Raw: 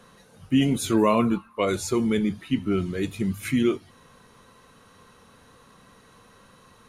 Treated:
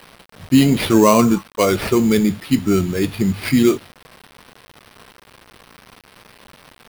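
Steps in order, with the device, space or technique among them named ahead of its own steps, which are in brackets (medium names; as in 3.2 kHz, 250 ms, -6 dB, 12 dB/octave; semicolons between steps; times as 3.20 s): early 8-bit sampler (sample-rate reducer 7 kHz, jitter 0%; bit crusher 8-bit); trim +8 dB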